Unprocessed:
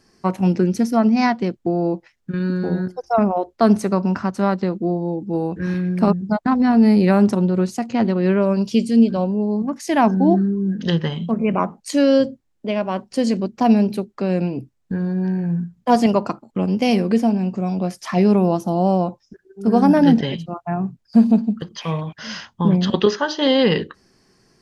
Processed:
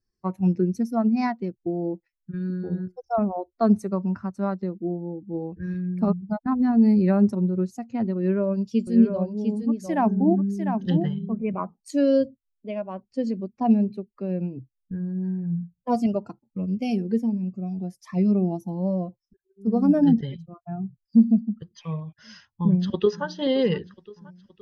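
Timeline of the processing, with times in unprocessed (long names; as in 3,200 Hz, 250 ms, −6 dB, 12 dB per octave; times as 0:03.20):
0:08.17–0:11.35: single-tap delay 700 ms −4.5 dB
0:12.80–0:15.22: high-frequency loss of the air 69 metres
0:15.89–0:21.54: phaser whose notches keep moving one way rising 1.3 Hz
0:22.27–0:23.26: delay throw 520 ms, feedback 75%, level −13 dB
whole clip: spectral dynamics exaggerated over time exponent 1.5; tilt shelving filter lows +4.5 dB; level −6 dB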